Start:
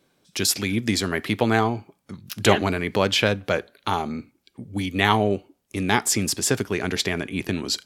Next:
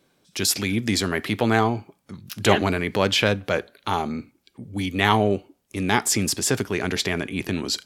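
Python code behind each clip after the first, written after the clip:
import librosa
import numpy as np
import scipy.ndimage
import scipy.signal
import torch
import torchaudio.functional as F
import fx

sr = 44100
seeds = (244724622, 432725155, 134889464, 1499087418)

y = fx.transient(x, sr, attack_db=-3, sustain_db=1)
y = y * librosa.db_to_amplitude(1.0)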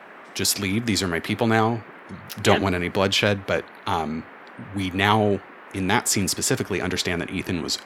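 y = fx.dmg_noise_band(x, sr, seeds[0], low_hz=200.0, high_hz=2000.0, level_db=-44.0)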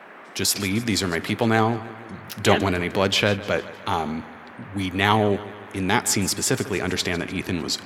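y = fx.echo_feedback(x, sr, ms=152, feedback_pct=55, wet_db=-17)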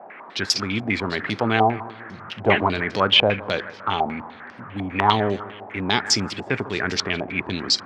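y = fx.filter_held_lowpass(x, sr, hz=10.0, low_hz=750.0, high_hz=5200.0)
y = y * librosa.db_to_amplitude(-2.5)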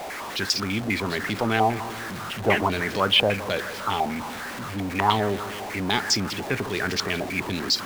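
y = x + 0.5 * 10.0 ** (-26.5 / 20.0) * np.sign(x)
y = y * librosa.db_to_amplitude(-4.0)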